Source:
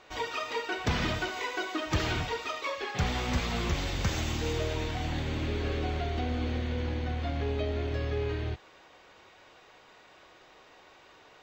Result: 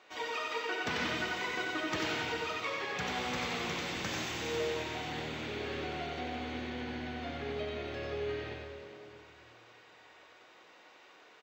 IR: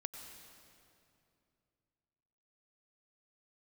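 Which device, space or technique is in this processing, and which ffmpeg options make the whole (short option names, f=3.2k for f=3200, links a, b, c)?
PA in a hall: -filter_complex "[0:a]highpass=200,equalizer=f=2.2k:t=o:w=1.5:g=3,aecho=1:1:92:0.631[a];[1:a]atrim=start_sample=2205[b];[a][b]afir=irnorm=-1:irlink=0,volume=-2.5dB"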